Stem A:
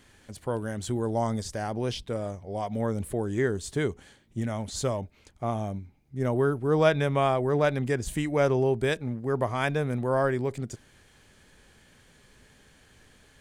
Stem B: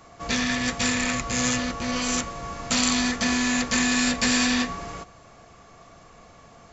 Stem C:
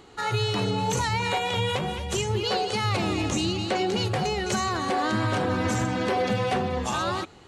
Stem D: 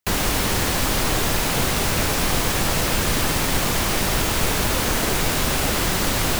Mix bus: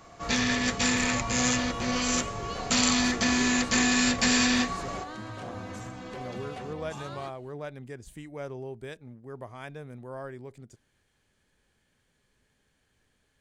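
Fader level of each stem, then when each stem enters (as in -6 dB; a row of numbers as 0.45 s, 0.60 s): -14.5 dB, -1.5 dB, -15.0 dB, mute; 0.00 s, 0.00 s, 0.05 s, mute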